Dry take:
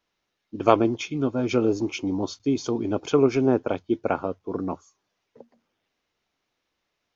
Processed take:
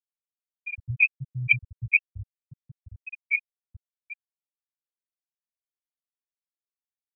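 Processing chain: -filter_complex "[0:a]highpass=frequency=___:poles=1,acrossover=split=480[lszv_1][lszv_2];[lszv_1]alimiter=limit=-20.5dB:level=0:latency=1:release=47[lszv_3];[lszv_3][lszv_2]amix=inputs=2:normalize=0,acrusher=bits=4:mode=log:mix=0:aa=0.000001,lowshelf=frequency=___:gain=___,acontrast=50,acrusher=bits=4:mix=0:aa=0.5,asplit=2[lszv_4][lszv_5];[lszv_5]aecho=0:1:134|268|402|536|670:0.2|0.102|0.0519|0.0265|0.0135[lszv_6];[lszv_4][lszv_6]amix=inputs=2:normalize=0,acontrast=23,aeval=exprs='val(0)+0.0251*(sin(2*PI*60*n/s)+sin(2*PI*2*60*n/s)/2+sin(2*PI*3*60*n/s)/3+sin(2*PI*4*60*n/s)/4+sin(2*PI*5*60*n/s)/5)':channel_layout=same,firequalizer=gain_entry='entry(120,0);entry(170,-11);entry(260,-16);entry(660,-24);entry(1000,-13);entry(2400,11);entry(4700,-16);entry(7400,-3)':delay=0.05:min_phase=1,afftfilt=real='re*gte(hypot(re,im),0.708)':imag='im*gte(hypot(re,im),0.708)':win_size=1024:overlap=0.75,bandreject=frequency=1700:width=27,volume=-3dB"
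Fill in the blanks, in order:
52, 190, 2.5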